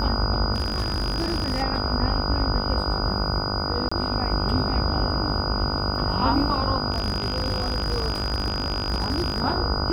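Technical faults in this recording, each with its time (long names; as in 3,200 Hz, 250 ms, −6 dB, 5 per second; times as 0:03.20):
mains buzz 50 Hz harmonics 30 −29 dBFS
whistle 4,900 Hz −29 dBFS
0:00.54–0:01.63: clipping −20.5 dBFS
0:03.89–0:03.92: drop-out 25 ms
0:06.92–0:09.42: clipping −19.5 dBFS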